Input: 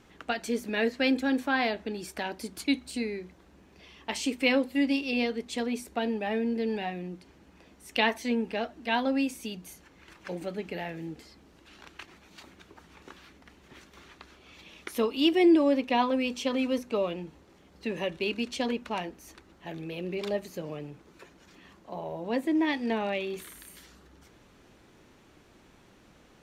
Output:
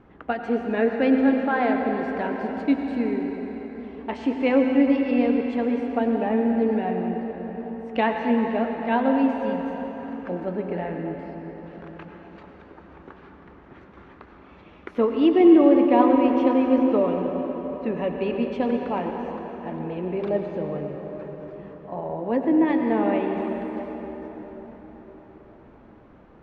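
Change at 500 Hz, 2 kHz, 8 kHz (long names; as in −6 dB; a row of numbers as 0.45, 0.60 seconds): +8.0 dB, 0.0 dB, below −20 dB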